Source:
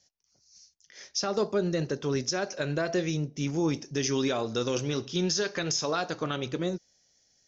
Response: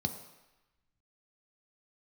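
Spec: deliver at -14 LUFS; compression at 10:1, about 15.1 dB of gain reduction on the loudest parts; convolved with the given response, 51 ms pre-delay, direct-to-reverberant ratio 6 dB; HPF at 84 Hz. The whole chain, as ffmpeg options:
-filter_complex "[0:a]highpass=84,acompressor=threshold=0.0112:ratio=10,asplit=2[s0][s1];[1:a]atrim=start_sample=2205,adelay=51[s2];[s1][s2]afir=irnorm=-1:irlink=0,volume=0.355[s3];[s0][s3]amix=inputs=2:normalize=0,volume=20"

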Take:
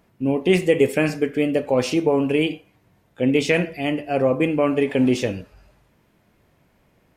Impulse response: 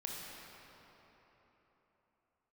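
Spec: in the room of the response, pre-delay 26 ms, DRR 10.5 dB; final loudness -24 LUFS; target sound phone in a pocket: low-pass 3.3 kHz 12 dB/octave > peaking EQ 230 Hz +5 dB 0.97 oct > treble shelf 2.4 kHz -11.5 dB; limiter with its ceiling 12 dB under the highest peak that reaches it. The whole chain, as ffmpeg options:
-filter_complex "[0:a]alimiter=limit=0.15:level=0:latency=1,asplit=2[s0][s1];[1:a]atrim=start_sample=2205,adelay=26[s2];[s1][s2]afir=irnorm=-1:irlink=0,volume=0.282[s3];[s0][s3]amix=inputs=2:normalize=0,lowpass=3300,equalizer=f=230:t=o:w=0.97:g=5,highshelf=f=2400:g=-11.5,volume=1.06"

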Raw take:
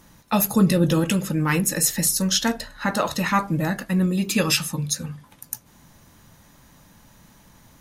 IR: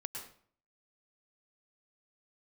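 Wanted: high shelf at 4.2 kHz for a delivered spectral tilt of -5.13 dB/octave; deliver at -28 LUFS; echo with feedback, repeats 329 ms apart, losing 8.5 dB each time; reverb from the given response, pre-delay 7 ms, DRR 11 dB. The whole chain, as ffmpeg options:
-filter_complex "[0:a]highshelf=f=4200:g=-8.5,aecho=1:1:329|658|987|1316:0.376|0.143|0.0543|0.0206,asplit=2[s0][s1];[1:a]atrim=start_sample=2205,adelay=7[s2];[s1][s2]afir=irnorm=-1:irlink=0,volume=0.316[s3];[s0][s3]amix=inputs=2:normalize=0,volume=0.531"

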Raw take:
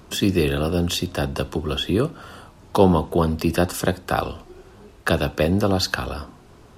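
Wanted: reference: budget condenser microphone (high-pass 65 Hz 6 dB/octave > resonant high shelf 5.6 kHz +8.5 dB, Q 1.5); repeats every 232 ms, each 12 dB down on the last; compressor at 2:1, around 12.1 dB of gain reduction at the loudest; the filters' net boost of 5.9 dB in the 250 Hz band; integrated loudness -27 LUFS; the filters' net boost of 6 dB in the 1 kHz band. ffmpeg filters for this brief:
-af "equalizer=f=250:t=o:g=8,equalizer=f=1000:t=o:g=7.5,acompressor=threshold=0.0398:ratio=2,highpass=f=65:p=1,highshelf=f=5600:t=q:w=1.5:g=8.5,aecho=1:1:232|464|696:0.251|0.0628|0.0157,volume=0.944"

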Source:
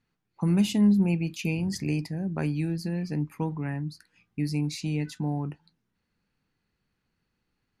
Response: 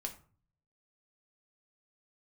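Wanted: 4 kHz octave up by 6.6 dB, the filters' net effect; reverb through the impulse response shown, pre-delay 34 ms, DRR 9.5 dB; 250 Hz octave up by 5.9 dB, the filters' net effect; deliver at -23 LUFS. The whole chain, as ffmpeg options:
-filter_complex "[0:a]equalizer=f=250:t=o:g=8.5,equalizer=f=4000:t=o:g=8.5,asplit=2[s0][s1];[1:a]atrim=start_sample=2205,adelay=34[s2];[s1][s2]afir=irnorm=-1:irlink=0,volume=0.398[s3];[s0][s3]amix=inputs=2:normalize=0,volume=0.794"

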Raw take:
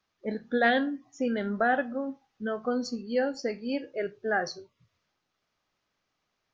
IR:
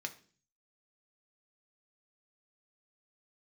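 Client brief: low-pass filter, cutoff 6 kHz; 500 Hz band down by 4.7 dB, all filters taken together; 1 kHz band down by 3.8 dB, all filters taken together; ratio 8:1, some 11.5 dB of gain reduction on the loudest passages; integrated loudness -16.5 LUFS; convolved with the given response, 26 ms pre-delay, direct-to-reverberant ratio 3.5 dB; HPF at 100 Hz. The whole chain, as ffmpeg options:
-filter_complex "[0:a]highpass=100,lowpass=6000,equalizer=f=500:t=o:g=-4.5,equalizer=f=1000:t=o:g=-3.5,acompressor=threshold=0.0224:ratio=8,asplit=2[s0][s1];[1:a]atrim=start_sample=2205,adelay=26[s2];[s1][s2]afir=irnorm=-1:irlink=0,volume=0.668[s3];[s0][s3]amix=inputs=2:normalize=0,volume=10.6"

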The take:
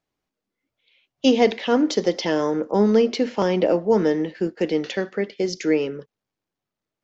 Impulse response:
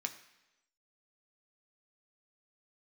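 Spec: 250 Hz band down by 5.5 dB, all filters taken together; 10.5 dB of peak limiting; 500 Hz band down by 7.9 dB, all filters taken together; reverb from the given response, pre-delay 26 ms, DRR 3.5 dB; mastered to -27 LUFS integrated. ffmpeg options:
-filter_complex "[0:a]equalizer=f=250:t=o:g=-4.5,equalizer=f=500:t=o:g=-8,alimiter=limit=0.119:level=0:latency=1,asplit=2[s0][s1];[1:a]atrim=start_sample=2205,adelay=26[s2];[s1][s2]afir=irnorm=-1:irlink=0,volume=0.631[s3];[s0][s3]amix=inputs=2:normalize=0,volume=1.19"

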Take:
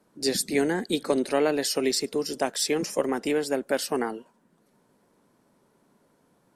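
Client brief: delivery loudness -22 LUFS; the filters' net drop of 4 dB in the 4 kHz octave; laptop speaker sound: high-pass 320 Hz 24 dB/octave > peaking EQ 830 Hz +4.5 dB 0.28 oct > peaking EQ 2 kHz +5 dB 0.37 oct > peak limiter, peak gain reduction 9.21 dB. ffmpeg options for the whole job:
-af "highpass=f=320:w=0.5412,highpass=f=320:w=1.3066,equalizer=f=830:t=o:w=0.28:g=4.5,equalizer=f=2000:t=o:w=0.37:g=5,equalizer=f=4000:t=o:g=-5.5,volume=2.82,alimiter=limit=0.251:level=0:latency=1"

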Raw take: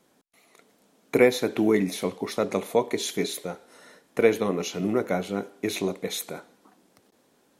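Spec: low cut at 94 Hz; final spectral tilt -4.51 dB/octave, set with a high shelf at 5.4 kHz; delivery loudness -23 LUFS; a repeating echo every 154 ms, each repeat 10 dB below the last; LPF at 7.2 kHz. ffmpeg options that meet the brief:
-af "highpass=94,lowpass=7200,highshelf=f=5400:g=-6.5,aecho=1:1:154|308|462|616:0.316|0.101|0.0324|0.0104,volume=1.41"

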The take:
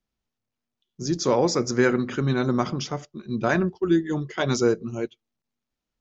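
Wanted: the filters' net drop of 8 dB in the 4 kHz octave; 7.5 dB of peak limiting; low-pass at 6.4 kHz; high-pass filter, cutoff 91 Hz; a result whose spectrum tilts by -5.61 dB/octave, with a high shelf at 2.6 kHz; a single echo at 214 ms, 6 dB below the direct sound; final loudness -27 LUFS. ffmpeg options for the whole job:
-af "highpass=91,lowpass=6400,highshelf=f=2600:g=-5,equalizer=f=4000:t=o:g=-4.5,alimiter=limit=0.178:level=0:latency=1,aecho=1:1:214:0.501,volume=0.891"

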